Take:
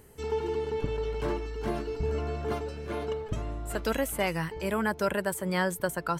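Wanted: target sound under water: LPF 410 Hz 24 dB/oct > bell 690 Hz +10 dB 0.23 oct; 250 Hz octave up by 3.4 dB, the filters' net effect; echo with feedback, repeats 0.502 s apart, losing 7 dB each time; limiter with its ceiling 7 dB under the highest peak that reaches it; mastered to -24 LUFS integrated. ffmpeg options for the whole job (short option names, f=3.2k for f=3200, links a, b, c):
-af "equalizer=f=250:t=o:g=5,alimiter=limit=-19.5dB:level=0:latency=1,lowpass=f=410:w=0.5412,lowpass=f=410:w=1.3066,equalizer=f=690:t=o:w=0.23:g=10,aecho=1:1:502|1004|1506|2008|2510:0.447|0.201|0.0905|0.0407|0.0183,volume=9.5dB"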